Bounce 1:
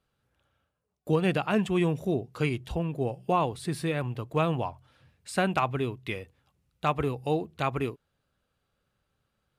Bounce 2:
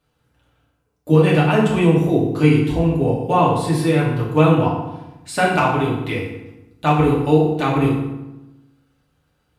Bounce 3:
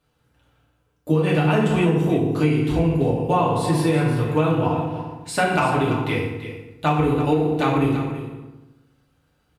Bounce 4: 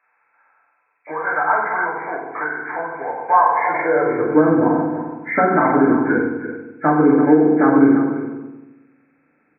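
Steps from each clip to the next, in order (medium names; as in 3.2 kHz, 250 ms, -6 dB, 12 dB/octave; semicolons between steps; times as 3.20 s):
FDN reverb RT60 1 s, low-frequency decay 1.3×, high-frequency decay 0.7×, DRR -5 dB; trim +4 dB
compression, threshold -15 dBFS, peak gain reduction 7.5 dB; on a send: delay 335 ms -11 dB
knee-point frequency compression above 1.3 kHz 4:1; high-pass sweep 920 Hz -> 260 Hz, 3.59–4.47 s; trim +2.5 dB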